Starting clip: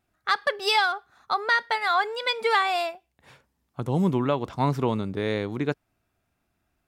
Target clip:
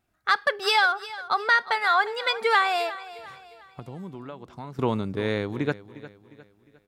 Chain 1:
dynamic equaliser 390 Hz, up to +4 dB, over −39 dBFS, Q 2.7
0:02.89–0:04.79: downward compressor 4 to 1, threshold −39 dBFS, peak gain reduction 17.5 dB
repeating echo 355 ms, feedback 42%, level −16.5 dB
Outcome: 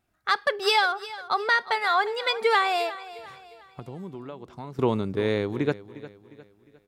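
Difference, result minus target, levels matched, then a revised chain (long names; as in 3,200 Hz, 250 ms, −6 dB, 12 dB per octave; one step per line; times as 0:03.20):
500 Hz band +3.0 dB
dynamic equaliser 1,500 Hz, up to +4 dB, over −39 dBFS, Q 2.7
0:02.89–0:04.79: downward compressor 4 to 1, threshold −39 dBFS, peak gain reduction 17 dB
repeating echo 355 ms, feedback 42%, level −16.5 dB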